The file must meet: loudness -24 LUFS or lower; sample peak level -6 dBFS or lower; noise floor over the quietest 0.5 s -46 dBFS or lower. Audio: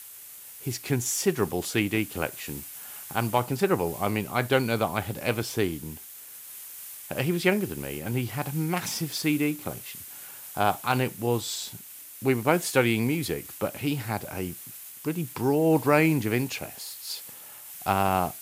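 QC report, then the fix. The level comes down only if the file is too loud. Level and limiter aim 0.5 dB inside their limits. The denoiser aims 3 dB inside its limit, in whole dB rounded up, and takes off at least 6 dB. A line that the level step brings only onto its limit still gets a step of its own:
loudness -27.5 LUFS: pass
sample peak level -8.5 dBFS: pass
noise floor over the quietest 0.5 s -45 dBFS: fail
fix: noise reduction 6 dB, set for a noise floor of -45 dBFS

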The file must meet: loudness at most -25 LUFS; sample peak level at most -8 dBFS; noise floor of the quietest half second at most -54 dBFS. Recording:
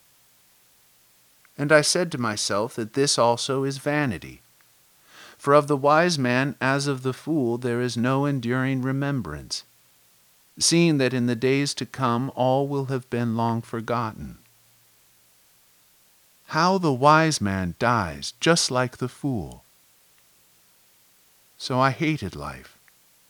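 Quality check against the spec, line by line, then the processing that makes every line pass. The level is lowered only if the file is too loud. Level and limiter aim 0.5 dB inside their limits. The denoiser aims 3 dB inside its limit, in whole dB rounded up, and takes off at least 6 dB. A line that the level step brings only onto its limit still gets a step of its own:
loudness -23.0 LUFS: fail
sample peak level -3.0 dBFS: fail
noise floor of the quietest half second -59 dBFS: pass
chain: trim -2.5 dB; peak limiter -8.5 dBFS

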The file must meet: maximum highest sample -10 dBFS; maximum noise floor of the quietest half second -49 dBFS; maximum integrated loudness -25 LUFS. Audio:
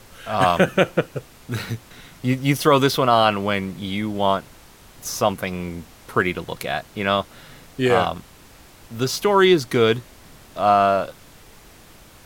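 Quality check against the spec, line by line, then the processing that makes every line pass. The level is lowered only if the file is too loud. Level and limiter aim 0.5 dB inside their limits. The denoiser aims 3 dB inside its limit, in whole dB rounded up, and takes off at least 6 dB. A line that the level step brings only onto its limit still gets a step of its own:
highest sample -4.0 dBFS: fail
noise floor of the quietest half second -47 dBFS: fail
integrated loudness -20.5 LUFS: fail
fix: trim -5 dB; peak limiter -10.5 dBFS

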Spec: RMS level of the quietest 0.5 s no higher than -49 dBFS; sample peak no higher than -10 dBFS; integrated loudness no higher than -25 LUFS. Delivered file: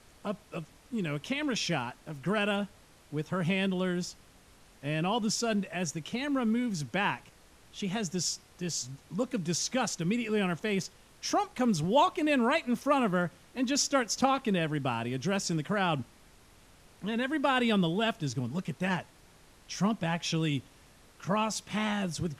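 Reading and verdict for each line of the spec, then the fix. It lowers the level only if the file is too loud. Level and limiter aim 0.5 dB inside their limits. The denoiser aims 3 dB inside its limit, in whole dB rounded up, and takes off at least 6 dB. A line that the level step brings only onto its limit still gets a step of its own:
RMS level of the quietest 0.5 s -58 dBFS: pass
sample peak -12.0 dBFS: pass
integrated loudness -31.0 LUFS: pass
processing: none needed

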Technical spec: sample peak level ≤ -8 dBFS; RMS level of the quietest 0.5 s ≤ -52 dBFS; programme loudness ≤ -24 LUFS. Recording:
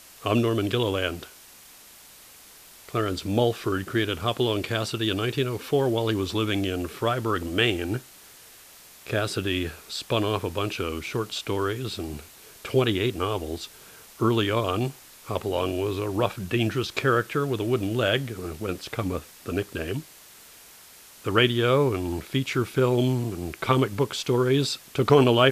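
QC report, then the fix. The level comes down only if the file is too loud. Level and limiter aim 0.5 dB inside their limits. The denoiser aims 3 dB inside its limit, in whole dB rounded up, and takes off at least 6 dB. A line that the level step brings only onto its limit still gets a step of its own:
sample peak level -4.5 dBFS: fail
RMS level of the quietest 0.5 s -49 dBFS: fail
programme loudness -26.0 LUFS: pass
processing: noise reduction 6 dB, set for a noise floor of -49 dBFS; peak limiter -8.5 dBFS

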